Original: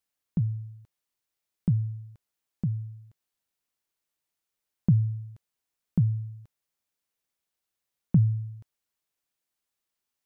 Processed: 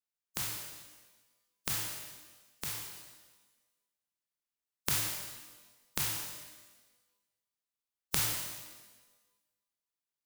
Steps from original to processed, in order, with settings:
compressing power law on the bin magnitudes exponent 0.13
parametric band 620 Hz −4 dB 0.59 octaves
reverb with rising layers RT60 1.2 s, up +12 semitones, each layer −8 dB, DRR 3.5 dB
level −11 dB

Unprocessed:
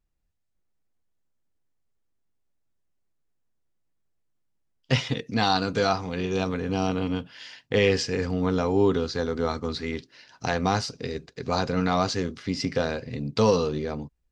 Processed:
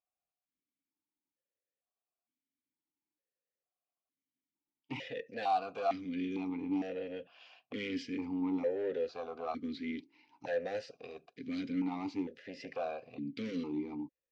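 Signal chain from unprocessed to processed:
soft clipping −21 dBFS, distortion −10 dB
formant filter that steps through the vowels 2.2 Hz
level +2.5 dB

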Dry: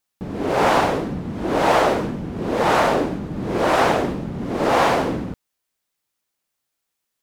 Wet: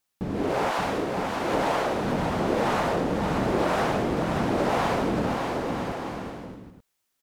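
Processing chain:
0:00.71–0:01.54: high-pass filter 730 Hz 6 dB per octave
downward compressor, threshold −23 dBFS, peak gain reduction 10.5 dB
on a send: bouncing-ball delay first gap 580 ms, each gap 0.65×, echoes 5

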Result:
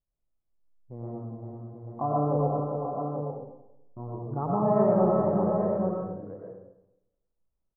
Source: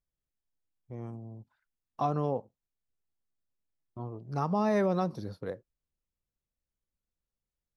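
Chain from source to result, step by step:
low-pass filter 1,100 Hz 24 dB per octave
on a send: multi-tap delay 392/584/836 ms −5.5/−13.5/−6.5 dB
on the sum: comb and all-pass reverb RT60 0.89 s, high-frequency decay 0.55×, pre-delay 65 ms, DRR −3 dB

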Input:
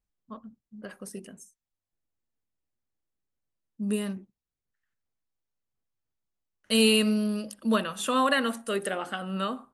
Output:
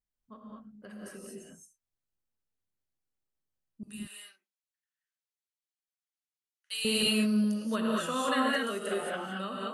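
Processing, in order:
0:03.83–0:06.85: flat-topped band-pass 5,400 Hz, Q 0.52
reverb whose tail is shaped and stops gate 250 ms rising, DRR −3.5 dB
level −8.5 dB

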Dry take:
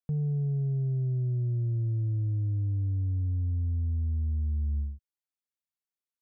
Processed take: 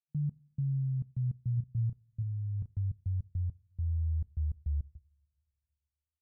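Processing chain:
brickwall limiter −29 dBFS, peak gain reduction 3 dB
spectral peaks only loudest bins 2
gate pattern ".x..xxx.x.x" 103 BPM −60 dB
0:01.54–0:02.73: double-tracking delay 33 ms −9.5 dB
coupled-rooms reverb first 0.33 s, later 2.4 s, from −20 dB, DRR 18 dB
level +1.5 dB

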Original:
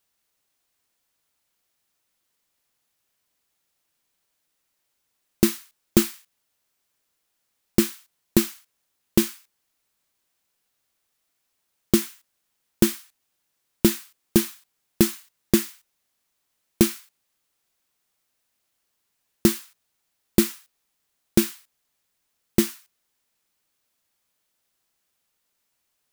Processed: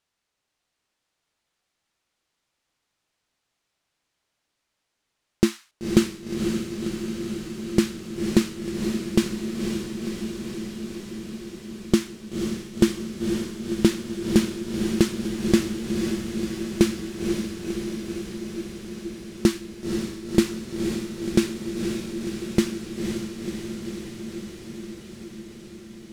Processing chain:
high-frequency loss of the air 65 metres
on a send: feedback delay with all-pass diffusion 515 ms, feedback 77%, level −5 dB

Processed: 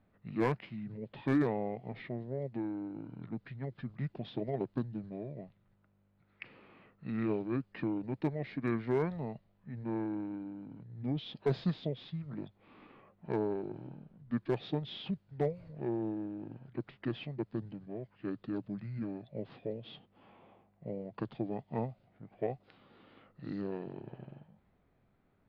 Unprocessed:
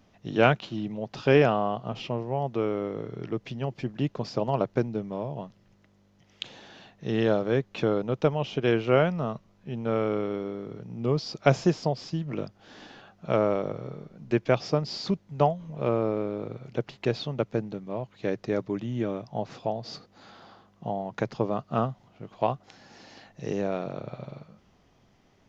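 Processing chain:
formants moved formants −6 semitones
hard clipping −12 dBFS, distortion −22 dB
low-pass that shuts in the quiet parts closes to 2,100 Hz, open at −23 dBFS
level −9 dB

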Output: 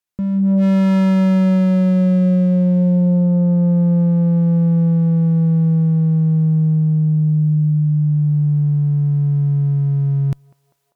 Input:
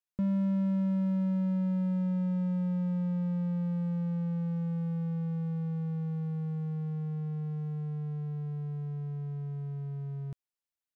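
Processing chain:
automatic gain control gain up to 15.5 dB
harmonic generator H 2 −24 dB, 5 −13 dB, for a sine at −7.5 dBFS
feedback echo with a band-pass in the loop 197 ms, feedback 65%, band-pass 800 Hz, level −21 dB

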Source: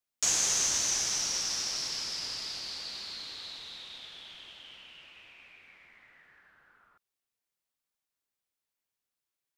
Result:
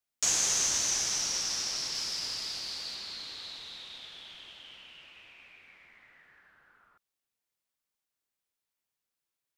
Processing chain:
0:01.95–0:02.95: high-shelf EQ 8,000 Hz +5.5 dB

